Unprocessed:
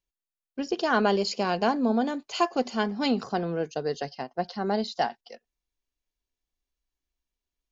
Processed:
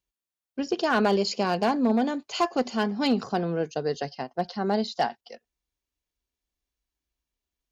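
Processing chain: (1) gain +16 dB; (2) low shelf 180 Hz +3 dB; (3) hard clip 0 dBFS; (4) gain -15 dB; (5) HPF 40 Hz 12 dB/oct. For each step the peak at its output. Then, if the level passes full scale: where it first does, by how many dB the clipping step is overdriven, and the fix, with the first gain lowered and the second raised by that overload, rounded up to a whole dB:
+7.0, +7.0, 0.0, -15.0, -13.5 dBFS; step 1, 7.0 dB; step 1 +9 dB, step 4 -8 dB

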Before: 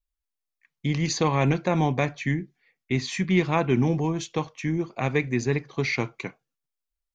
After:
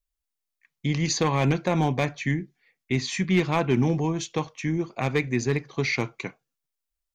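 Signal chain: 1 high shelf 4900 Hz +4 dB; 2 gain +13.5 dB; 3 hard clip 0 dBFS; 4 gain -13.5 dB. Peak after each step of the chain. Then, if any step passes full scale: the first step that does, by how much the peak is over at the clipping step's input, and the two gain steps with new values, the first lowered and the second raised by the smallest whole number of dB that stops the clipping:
-8.5, +5.0, 0.0, -13.5 dBFS; step 2, 5.0 dB; step 2 +8.5 dB, step 4 -8.5 dB

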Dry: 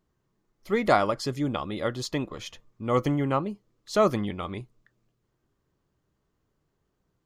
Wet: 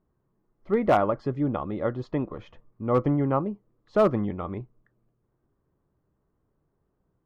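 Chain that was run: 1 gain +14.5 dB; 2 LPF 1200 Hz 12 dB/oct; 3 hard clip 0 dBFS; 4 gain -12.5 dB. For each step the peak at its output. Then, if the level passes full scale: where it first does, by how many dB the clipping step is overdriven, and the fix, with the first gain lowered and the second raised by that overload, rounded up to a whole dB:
+7.5, +5.5, 0.0, -12.5 dBFS; step 1, 5.5 dB; step 1 +8.5 dB, step 4 -6.5 dB

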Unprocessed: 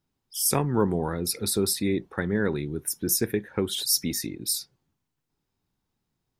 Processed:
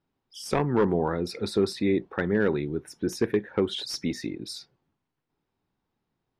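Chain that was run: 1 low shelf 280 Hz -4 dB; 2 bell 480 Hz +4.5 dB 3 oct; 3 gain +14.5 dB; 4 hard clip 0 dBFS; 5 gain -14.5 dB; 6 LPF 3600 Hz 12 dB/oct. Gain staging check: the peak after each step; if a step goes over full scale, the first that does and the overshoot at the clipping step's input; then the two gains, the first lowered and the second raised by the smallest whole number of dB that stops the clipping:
-8.5, -7.0, +7.5, 0.0, -14.5, -14.0 dBFS; step 3, 7.5 dB; step 3 +6.5 dB, step 5 -6.5 dB

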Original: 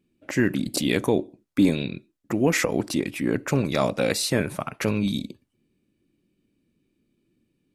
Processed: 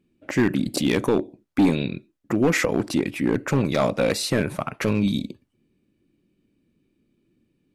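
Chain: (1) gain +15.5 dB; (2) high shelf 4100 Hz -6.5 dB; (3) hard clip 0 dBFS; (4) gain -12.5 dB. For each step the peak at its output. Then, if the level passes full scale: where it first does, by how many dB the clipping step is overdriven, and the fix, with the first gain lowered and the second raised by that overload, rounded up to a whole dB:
+8.0, +7.5, 0.0, -12.5 dBFS; step 1, 7.5 dB; step 1 +7.5 dB, step 4 -4.5 dB

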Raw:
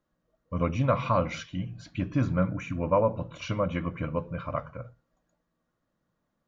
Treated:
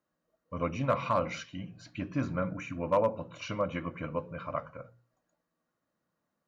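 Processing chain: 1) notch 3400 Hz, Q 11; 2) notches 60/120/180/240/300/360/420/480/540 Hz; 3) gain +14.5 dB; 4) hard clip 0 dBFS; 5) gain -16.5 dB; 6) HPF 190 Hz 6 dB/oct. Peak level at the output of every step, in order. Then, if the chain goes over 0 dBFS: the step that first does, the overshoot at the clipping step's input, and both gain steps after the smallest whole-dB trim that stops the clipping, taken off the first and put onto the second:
-10.5, -11.0, +3.5, 0.0, -16.5, -15.0 dBFS; step 3, 3.5 dB; step 3 +10.5 dB, step 5 -12.5 dB

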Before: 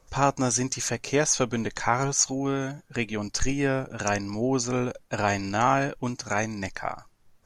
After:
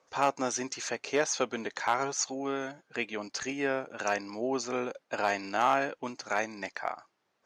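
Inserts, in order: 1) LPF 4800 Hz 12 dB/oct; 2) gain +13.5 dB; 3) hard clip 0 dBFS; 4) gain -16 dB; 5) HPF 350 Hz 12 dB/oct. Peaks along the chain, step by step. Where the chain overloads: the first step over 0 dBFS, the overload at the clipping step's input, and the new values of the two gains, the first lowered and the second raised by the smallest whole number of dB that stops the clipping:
-7.0, +6.5, 0.0, -16.0, -12.0 dBFS; step 2, 6.5 dB; step 2 +6.5 dB, step 4 -9 dB

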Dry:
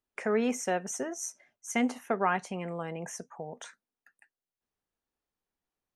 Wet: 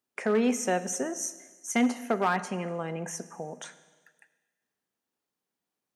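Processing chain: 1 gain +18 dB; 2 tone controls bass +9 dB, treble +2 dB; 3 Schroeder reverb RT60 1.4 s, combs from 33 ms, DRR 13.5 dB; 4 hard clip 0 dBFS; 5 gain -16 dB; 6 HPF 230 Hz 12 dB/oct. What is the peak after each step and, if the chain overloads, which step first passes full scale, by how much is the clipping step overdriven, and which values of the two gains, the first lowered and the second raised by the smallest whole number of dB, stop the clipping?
+3.5, +5.0, +5.5, 0.0, -16.0, -12.0 dBFS; step 1, 5.5 dB; step 1 +12 dB, step 5 -10 dB

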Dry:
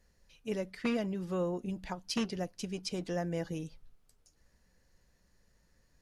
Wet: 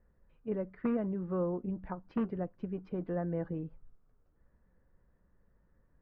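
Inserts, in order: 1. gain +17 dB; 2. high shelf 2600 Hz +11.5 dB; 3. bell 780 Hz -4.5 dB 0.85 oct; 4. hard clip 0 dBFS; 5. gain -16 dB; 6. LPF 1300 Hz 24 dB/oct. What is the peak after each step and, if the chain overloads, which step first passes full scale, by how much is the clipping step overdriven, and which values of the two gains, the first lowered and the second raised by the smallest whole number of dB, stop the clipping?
-3.0, +3.5, +3.5, 0.0, -16.0, -21.5 dBFS; step 2, 3.5 dB; step 1 +13 dB, step 5 -12 dB

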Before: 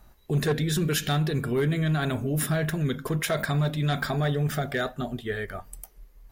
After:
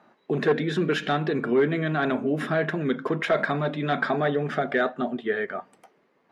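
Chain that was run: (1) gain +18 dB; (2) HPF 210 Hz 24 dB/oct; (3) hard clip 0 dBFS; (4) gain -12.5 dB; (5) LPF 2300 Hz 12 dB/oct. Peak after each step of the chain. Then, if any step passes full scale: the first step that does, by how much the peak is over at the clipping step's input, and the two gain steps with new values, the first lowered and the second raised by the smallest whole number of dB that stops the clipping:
+2.5, +4.0, 0.0, -12.5, -12.0 dBFS; step 1, 4.0 dB; step 1 +14 dB, step 4 -8.5 dB

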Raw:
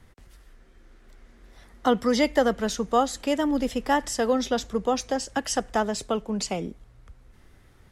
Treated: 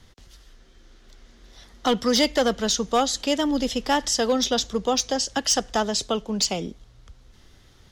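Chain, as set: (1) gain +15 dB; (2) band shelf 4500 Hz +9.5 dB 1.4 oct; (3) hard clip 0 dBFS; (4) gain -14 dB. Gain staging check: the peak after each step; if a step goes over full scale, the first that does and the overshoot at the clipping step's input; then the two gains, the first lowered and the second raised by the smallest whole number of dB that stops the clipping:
+7.5, +8.0, 0.0, -14.0 dBFS; step 1, 8.0 dB; step 1 +7 dB, step 4 -6 dB

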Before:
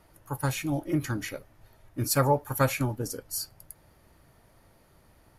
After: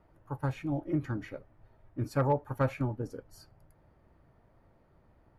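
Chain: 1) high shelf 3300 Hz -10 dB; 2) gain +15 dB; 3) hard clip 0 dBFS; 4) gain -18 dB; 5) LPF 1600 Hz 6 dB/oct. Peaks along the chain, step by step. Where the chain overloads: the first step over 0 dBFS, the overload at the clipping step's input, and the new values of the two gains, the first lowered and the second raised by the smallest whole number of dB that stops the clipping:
-11.0, +4.0, 0.0, -18.0, -18.0 dBFS; step 2, 4.0 dB; step 2 +11 dB, step 4 -14 dB

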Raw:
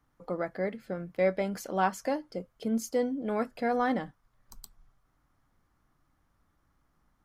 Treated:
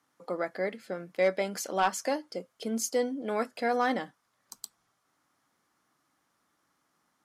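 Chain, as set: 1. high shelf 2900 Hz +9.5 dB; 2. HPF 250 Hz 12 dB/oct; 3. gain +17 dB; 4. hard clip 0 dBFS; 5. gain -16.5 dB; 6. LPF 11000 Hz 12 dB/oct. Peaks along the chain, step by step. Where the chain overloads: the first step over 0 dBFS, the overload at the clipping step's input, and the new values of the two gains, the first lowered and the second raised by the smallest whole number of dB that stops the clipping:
-12.5, -12.0, +5.0, 0.0, -16.5, -16.0 dBFS; step 3, 5.0 dB; step 3 +12 dB, step 5 -11.5 dB

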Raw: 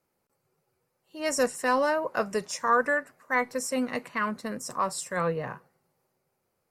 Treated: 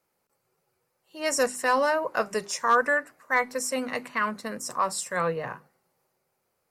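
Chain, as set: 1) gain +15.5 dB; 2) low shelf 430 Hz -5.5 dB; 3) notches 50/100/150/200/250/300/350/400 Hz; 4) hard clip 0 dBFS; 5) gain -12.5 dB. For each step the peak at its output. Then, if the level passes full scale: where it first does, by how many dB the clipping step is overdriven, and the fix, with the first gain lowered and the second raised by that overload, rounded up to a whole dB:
+4.0, +3.0, +3.0, 0.0, -12.5 dBFS; step 1, 3.0 dB; step 1 +12.5 dB, step 5 -9.5 dB

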